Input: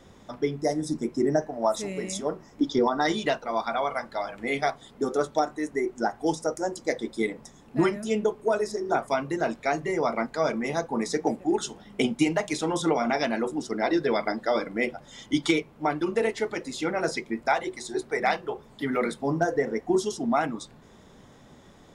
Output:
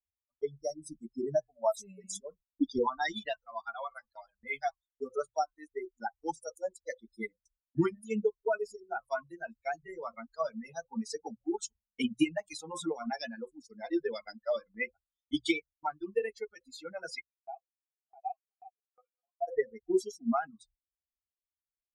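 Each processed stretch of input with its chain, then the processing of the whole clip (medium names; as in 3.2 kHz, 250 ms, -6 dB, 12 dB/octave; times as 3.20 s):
17.21–19.48 s: chunks repeated in reverse 628 ms, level -5 dB + vowel filter a
whole clip: expander on every frequency bin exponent 3; hum notches 60/120 Hz; gate with hold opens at -59 dBFS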